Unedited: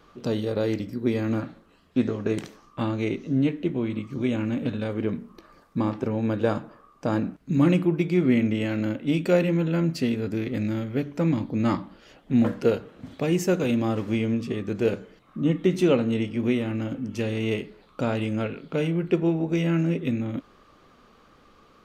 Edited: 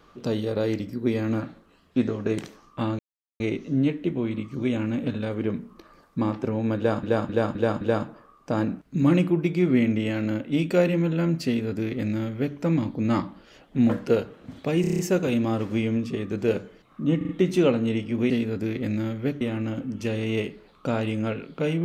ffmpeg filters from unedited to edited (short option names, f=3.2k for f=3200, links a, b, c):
-filter_complex "[0:a]asplit=17[a][b][c][d][e][f][g][h][i][j][k][l][m][n][o][p][q];[a]atrim=end=2.99,asetpts=PTS-STARTPTS,afade=t=out:st=2.986:d=0.004:c=hsin,apad=pad_dur=0.41[r];[b]atrim=start=2.99:end=6.622,asetpts=PTS-STARTPTS,afade=t=in:d=0.004:c=hsin[s];[c]atrim=start=6.358:end=6.622[t];[d]atrim=start=6.358:end=6.622[u];[e]atrim=start=6.358:end=6.622[v];[f]atrim=start=6.358:end=13.392[w];[g]atrim=start=13.358:end=13.392[x];[h]atrim=start=13.358:end=13.392[y];[i]atrim=start=13.358:end=13.392[z];[j]atrim=start=13.358:end=13.392[aa];[k]atrim=start=13.358:end=13.392[ab];[l]atrim=start=13.358:end=15.582[ac];[m]atrim=start=15.538:end=15.582[ad];[n]atrim=start=15.538:end=15.582[ae];[o]atrim=start=15.538:end=16.552[af];[p]atrim=start=10.008:end=11.122[ag];[q]atrim=start=16.548[ah];[r][s]concat=n=2:v=0:a=1[ai];[ai][t]acrossfade=d=0.004:c1=hsin:c2=hsin[aj];[aj][u]acrossfade=d=0.004:c1=hsin:c2=hsin[ak];[ak][v]acrossfade=d=0.004:c1=hsin:c2=hsin[al];[al][w]acrossfade=d=0.004:c1=hsin:c2=hsin[am];[am][x]acrossfade=d=0.004:c1=hsin:c2=hsin[an];[an][y]acrossfade=d=0.004:c1=hsin:c2=hsin[ao];[ao][z]acrossfade=d=0.004:c1=hsin:c2=hsin[ap];[ap][aa]acrossfade=d=0.004:c1=hsin:c2=hsin[aq];[aq][ab]acrossfade=d=0.004:c1=hsin:c2=hsin[ar];[ar][ac]acrossfade=d=0.004:c1=hsin:c2=hsin[as];[as][ad]acrossfade=d=0.004:c1=hsin:c2=hsin[at];[at][ae]acrossfade=d=0.004:c1=hsin:c2=hsin[au];[au][af]acrossfade=d=0.004:c1=hsin:c2=hsin[av];[av][ag]acrossfade=d=0.004:c1=hsin:c2=hsin[aw];[aw][ah]acrossfade=d=0.004:c1=hsin:c2=hsin"